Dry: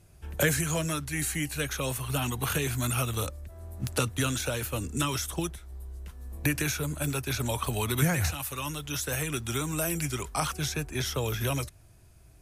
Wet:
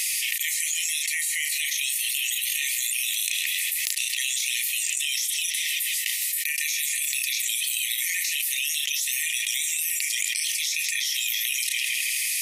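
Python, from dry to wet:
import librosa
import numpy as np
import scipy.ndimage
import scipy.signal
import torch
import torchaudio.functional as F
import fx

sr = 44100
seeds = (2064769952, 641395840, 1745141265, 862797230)

y = fx.brickwall_highpass(x, sr, low_hz=1800.0)
y = fx.doubler(y, sr, ms=34.0, db=-11.5)
y = fx.echo_filtered(y, sr, ms=160, feedback_pct=69, hz=3000.0, wet_db=-15)
y = fx.env_flatten(y, sr, amount_pct=100)
y = y * 10.0 ** (1.5 / 20.0)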